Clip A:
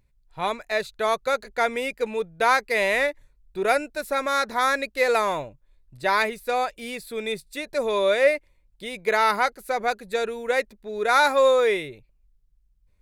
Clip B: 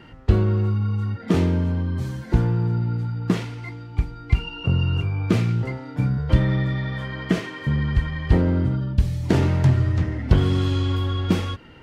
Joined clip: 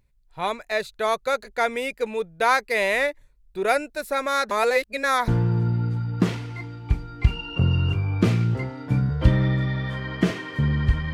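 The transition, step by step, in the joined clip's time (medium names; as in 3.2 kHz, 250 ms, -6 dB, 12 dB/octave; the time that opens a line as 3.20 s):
clip A
4.51–5.28 s: reverse
5.28 s: go over to clip B from 2.36 s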